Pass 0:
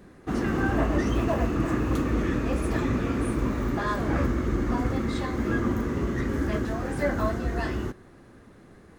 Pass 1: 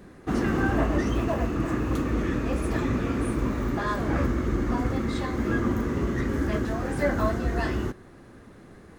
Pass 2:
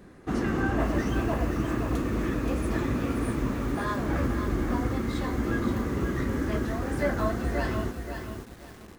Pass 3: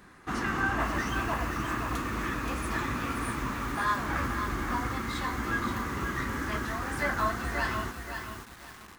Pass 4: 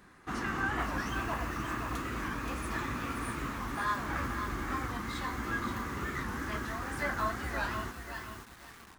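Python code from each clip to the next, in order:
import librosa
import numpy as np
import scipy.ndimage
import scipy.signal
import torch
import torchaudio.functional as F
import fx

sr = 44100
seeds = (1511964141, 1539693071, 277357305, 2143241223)

y1 = fx.rider(x, sr, range_db=10, speed_s=2.0)
y2 = fx.echo_crushed(y1, sr, ms=526, feedback_pct=35, bits=7, wet_db=-6.5)
y2 = F.gain(torch.from_numpy(y2), -2.5).numpy()
y3 = fx.low_shelf_res(y2, sr, hz=750.0, db=-9.0, q=1.5)
y3 = F.gain(torch.from_numpy(y3), 3.0).numpy()
y4 = fx.record_warp(y3, sr, rpm=45.0, depth_cents=160.0)
y4 = F.gain(torch.from_numpy(y4), -4.0).numpy()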